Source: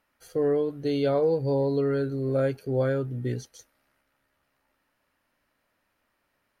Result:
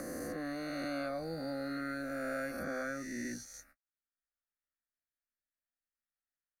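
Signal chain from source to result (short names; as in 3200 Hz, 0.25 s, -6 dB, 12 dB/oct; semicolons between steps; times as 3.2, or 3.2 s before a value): spectral swells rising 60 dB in 2.18 s; gate -58 dBFS, range -46 dB; bell 440 Hz -14 dB 2.5 oct; fixed phaser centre 640 Hz, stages 8; three-band squash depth 70%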